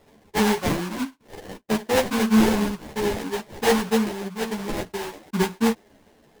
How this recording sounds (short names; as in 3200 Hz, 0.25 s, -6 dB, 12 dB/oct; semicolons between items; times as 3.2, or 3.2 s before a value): aliases and images of a low sample rate 1300 Hz, jitter 20%; a shimmering, thickened sound